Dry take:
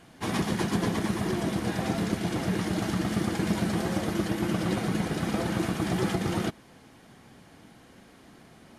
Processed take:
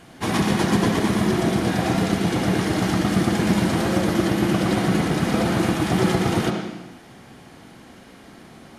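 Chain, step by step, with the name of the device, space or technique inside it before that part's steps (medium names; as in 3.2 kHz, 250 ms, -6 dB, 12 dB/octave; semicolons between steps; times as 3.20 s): filtered reverb send (on a send: high-pass 160 Hz + low-pass 5.9 kHz + reverberation RT60 1.1 s, pre-delay 62 ms, DRR 3 dB); on the sum: trim +6.5 dB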